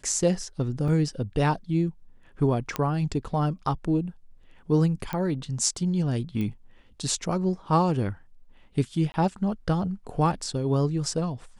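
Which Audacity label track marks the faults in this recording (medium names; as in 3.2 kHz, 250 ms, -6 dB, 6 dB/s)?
0.880000	0.880000	dropout 3 ms
2.760000	2.760000	pop -12 dBFS
5.130000	5.130000	pop -17 dBFS
6.410000	6.410000	pop -20 dBFS
9.120000	9.140000	dropout 20 ms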